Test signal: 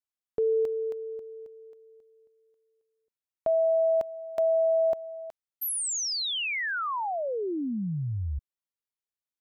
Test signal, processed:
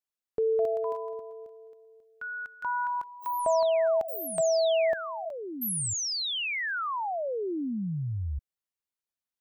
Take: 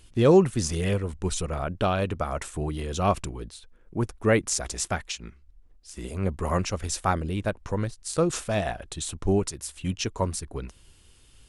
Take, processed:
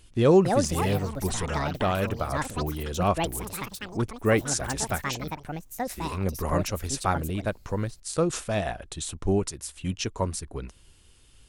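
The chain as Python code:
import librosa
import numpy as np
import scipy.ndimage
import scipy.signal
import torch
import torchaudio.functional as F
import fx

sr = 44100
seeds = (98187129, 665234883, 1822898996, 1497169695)

y = fx.echo_pitch(x, sr, ms=336, semitones=7, count=2, db_per_echo=-6.0)
y = y * librosa.db_to_amplitude(-1.0)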